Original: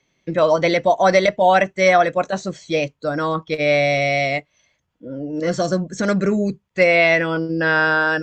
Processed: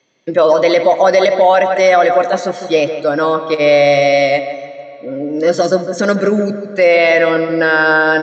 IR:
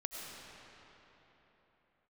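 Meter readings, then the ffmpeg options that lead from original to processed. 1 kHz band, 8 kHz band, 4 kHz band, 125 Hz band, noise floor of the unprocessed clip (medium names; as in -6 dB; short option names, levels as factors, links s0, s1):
+5.0 dB, no reading, +5.0 dB, -1.0 dB, -70 dBFS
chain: -filter_complex "[0:a]highpass=160,equalizer=f=170:t=q:w=4:g=-8,equalizer=f=520:t=q:w=4:g=4,equalizer=f=2300:t=q:w=4:g=-4,lowpass=f=6800:w=0.5412,lowpass=f=6800:w=1.3066,asplit=2[s0][s1];[s1]adelay=153,lowpass=f=2500:p=1,volume=0.316,asplit=2[s2][s3];[s3]adelay=153,lowpass=f=2500:p=1,volume=0.44,asplit=2[s4][s5];[s5]adelay=153,lowpass=f=2500:p=1,volume=0.44,asplit=2[s6][s7];[s7]adelay=153,lowpass=f=2500:p=1,volume=0.44,asplit=2[s8][s9];[s9]adelay=153,lowpass=f=2500:p=1,volume=0.44[s10];[s0][s2][s4][s6][s8][s10]amix=inputs=6:normalize=0,asplit=2[s11][s12];[1:a]atrim=start_sample=2205,adelay=14[s13];[s12][s13]afir=irnorm=-1:irlink=0,volume=0.168[s14];[s11][s14]amix=inputs=2:normalize=0,alimiter=level_in=2.37:limit=0.891:release=50:level=0:latency=1,volume=0.891"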